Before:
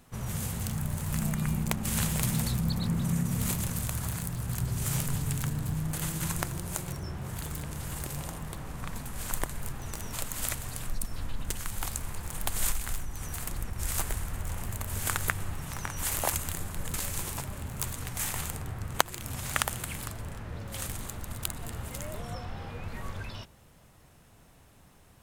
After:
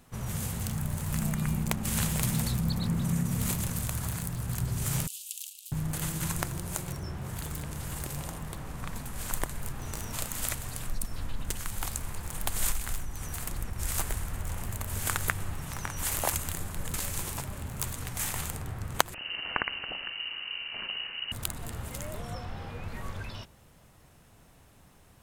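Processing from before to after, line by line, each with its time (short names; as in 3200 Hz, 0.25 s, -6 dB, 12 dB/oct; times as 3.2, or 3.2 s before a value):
5.07–5.72 steep high-pass 2700 Hz 72 dB/oct
9.74–10.37 doubler 35 ms -6 dB
19.14–21.32 inverted band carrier 2900 Hz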